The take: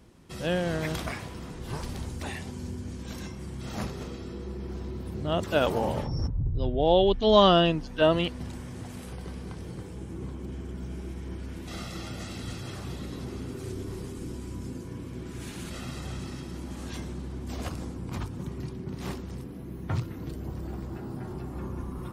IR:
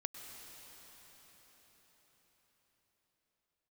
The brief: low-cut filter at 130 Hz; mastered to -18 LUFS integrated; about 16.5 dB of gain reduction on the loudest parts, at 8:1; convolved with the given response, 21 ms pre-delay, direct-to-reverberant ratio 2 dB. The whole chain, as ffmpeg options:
-filter_complex "[0:a]highpass=130,acompressor=threshold=-31dB:ratio=8,asplit=2[a][b];[1:a]atrim=start_sample=2205,adelay=21[c];[b][c]afir=irnorm=-1:irlink=0,volume=-0.5dB[d];[a][d]amix=inputs=2:normalize=0,volume=18.5dB"

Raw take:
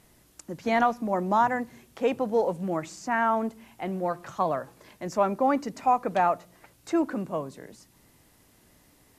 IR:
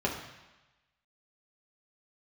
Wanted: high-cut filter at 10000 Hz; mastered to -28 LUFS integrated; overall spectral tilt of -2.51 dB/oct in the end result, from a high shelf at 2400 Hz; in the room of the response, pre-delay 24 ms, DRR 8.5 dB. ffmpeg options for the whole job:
-filter_complex "[0:a]lowpass=10k,highshelf=f=2.4k:g=-5,asplit=2[a][b];[1:a]atrim=start_sample=2205,adelay=24[c];[b][c]afir=irnorm=-1:irlink=0,volume=-17.5dB[d];[a][d]amix=inputs=2:normalize=0,volume=-1dB"

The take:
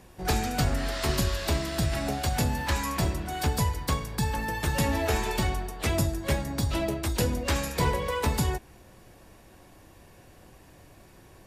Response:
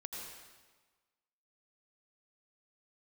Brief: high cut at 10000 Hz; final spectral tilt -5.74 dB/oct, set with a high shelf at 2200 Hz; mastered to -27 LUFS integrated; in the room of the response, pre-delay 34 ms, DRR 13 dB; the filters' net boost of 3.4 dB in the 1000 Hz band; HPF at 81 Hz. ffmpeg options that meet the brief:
-filter_complex "[0:a]highpass=81,lowpass=10k,equalizer=f=1k:t=o:g=5.5,highshelf=f=2.2k:g=-7,asplit=2[a][b];[1:a]atrim=start_sample=2205,adelay=34[c];[b][c]afir=irnorm=-1:irlink=0,volume=-11.5dB[d];[a][d]amix=inputs=2:normalize=0,volume=2dB"

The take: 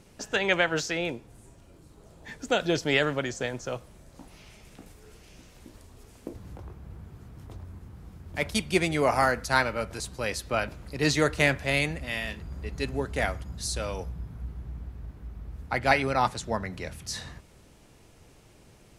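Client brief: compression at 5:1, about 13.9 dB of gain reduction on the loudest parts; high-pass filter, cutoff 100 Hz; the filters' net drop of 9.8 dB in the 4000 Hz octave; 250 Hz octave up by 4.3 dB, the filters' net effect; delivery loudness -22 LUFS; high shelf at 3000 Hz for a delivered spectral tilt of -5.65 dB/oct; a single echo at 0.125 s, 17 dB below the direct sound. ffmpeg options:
-af "highpass=100,equalizer=f=250:t=o:g=6,highshelf=f=3k:g=-6.5,equalizer=f=4k:t=o:g=-8,acompressor=threshold=-33dB:ratio=5,aecho=1:1:125:0.141,volume=17dB"

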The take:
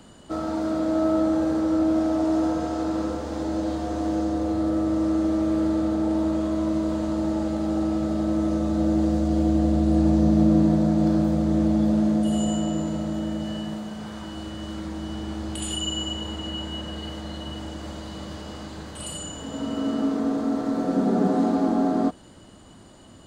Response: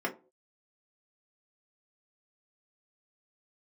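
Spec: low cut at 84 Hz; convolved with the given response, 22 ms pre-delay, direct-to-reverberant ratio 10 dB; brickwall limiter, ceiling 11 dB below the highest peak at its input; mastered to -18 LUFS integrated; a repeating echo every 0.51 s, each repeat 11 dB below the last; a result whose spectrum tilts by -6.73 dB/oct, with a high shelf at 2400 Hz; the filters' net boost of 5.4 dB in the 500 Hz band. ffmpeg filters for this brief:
-filter_complex "[0:a]highpass=84,equalizer=f=500:t=o:g=8,highshelf=f=2.4k:g=-5,alimiter=limit=-17dB:level=0:latency=1,aecho=1:1:510|1020|1530:0.282|0.0789|0.0221,asplit=2[a][b];[1:a]atrim=start_sample=2205,adelay=22[c];[b][c]afir=irnorm=-1:irlink=0,volume=-17dB[d];[a][d]amix=inputs=2:normalize=0,volume=7dB"

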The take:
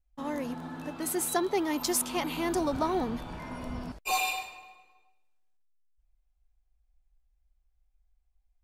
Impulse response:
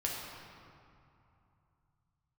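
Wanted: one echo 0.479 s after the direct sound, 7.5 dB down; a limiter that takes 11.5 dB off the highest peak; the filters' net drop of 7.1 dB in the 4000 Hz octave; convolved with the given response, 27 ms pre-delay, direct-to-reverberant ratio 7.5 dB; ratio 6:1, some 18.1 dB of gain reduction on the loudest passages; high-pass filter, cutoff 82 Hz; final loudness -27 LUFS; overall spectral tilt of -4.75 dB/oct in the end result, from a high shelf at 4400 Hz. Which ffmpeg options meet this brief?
-filter_complex "[0:a]highpass=82,equalizer=f=4k:t=o:g=-7,highshelf=f=4.4k:g=-4,acompressor=threshold=-45dB:ratio=6,alimiter=level_in=21dB:limit=-24dB:level=0:latency=1,volume=-21dB,aecho=1:1:479:0.422,asplit=2[a][b];[1:a]atrim=start_sample=2205,adelay=27[c];[b][c]afir=irnorm=-1:irlink=0,volume=-11.5dB[d];[a][d]amix=inputs=2:normalize=0,volume=25dB"

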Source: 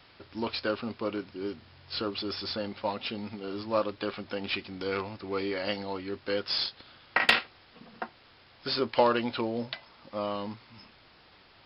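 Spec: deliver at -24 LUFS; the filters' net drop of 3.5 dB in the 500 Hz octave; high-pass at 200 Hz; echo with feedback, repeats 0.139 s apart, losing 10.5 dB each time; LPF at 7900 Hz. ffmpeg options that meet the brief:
-af "highpass=200,lowpass=7.9k,equalizer=f=500:t=o:g=-4,aecho=1:1:139|278|417:0.299|0.0896|0.0269,volume=8.5dB"

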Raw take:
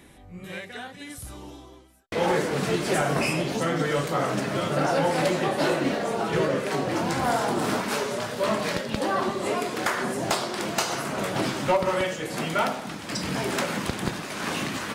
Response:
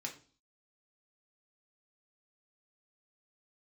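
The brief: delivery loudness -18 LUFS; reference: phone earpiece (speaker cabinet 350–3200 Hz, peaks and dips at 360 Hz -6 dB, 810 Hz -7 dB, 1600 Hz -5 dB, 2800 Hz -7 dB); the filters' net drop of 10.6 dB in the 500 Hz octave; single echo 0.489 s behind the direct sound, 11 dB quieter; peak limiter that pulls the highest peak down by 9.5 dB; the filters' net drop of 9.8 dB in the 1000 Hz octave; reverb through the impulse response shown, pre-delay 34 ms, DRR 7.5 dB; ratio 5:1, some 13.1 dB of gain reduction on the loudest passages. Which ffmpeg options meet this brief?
-filter_complex "[0:a]equalizer=f=500:t=o:g=-7.5,equalizer=f=1k:t=o:g=-6,acompressor=threshold=-39dB:ratio=5,alimiter=level_in=8.5dB:limit=-24dB:level=0:latency=1,volume=-8.5dB,aecho=1:1:489:0.282,asplit=2[a][b];[1:a]atrim=start_sample=2205,adelay=34[c];[b][c]afir=irnorm=-1:irlink=0,volume=-7dB[d];[a][d]amix=inputs=2:normalize=0,highpass=350,equalizer=f=360:t=q:w=4:g=-6,equalizer=f=810:t=q:w=4:g=-7,equalizer=f=1.6k:t=q:w=4:g=-5,equalizer=f=2.8k:t=q:w=4:g=-7,lowpass=f=3.2k:w=0.5412,lowpass=f=3.2k:w=1.3066,volume=29dB"

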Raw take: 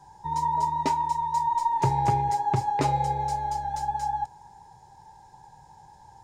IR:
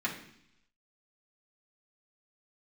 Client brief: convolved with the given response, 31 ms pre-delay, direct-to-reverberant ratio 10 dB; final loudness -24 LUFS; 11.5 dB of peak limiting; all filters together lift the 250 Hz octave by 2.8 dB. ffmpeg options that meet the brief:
-filter_complex "[0:a]equalizer=f=250:t=o:g=4.5,alimiter=limit=-21.5dB:level=0:latency=1,asplit=2[a][b];[1:a]atrim=start_sample=2205,adelay=31[c];[b][c]afir=irnorm=-1:irlink=0,volume=-16.5dB[d];[a][d]amix=inputs=2:normalize=0,volume=5dB"

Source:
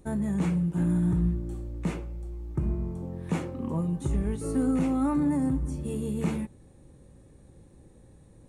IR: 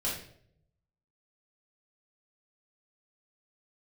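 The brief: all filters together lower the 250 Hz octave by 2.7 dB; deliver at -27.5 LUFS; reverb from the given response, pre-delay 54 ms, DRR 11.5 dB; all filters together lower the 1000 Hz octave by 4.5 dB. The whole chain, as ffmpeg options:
-filter_complex "[0:a]equalizer=f=250:t=o:g=-3.5,equalizer=f=1k:t=o:g=-5.5,asplit=2[a][b];[1:a]atrim=start_sample=2205,adelay=54[c];[b][c]afir=irnorm=-1:irlink=0,volume=-17dB[d];[a][d]amix=inputs=2:normalize=0,volume=3dB"

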